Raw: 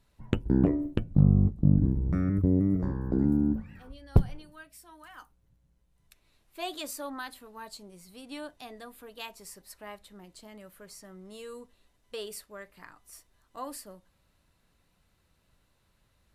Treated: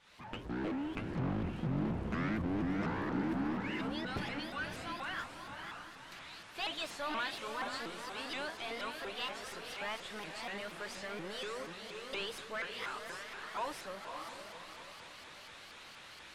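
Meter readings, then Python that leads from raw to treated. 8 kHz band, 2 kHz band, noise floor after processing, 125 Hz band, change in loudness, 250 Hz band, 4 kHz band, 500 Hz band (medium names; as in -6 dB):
-4.5 dB, +8.0 dB, -53 dBFS, -14.5 dB, -12.0 dB, -9.5 dB, +5.0 dB, -3.5 dB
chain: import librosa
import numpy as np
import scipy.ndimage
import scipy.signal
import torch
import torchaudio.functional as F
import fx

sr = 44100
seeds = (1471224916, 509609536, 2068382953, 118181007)

y = fx.fade_in_head(x, sr, length_s=1.16)
y = np.diff(y, prepend=0.0)
y = fx.power_curve(y, sr, exponent=0.35)
y = scipy.signal.sosfilt(scipy.signal.butter(2, 2700.0, 'lowpass', fs=sr, output='sos'), y)
y = fx.echo_diffused(y, sr, ms=558, feedback_pct=43, wet_db=-5.0)
y = fx.vibrato_shape(y, sr, shape='saw_up', rate_hz=4.2, depth_cents=250.0)
y = y * librosa.db_to_amplitude(1.0)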